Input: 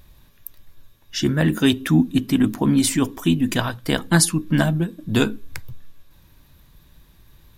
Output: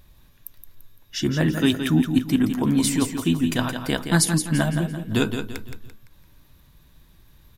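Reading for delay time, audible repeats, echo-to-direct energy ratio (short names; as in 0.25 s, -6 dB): 0.17 s, 4, -7.0 dB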